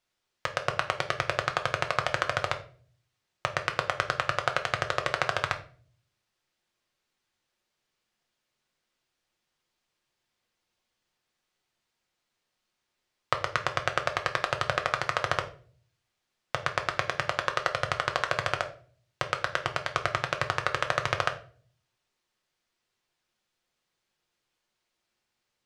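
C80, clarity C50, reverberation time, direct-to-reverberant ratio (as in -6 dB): 17.5 dB, 13.0 dB, 0.45 s, 5.0 dB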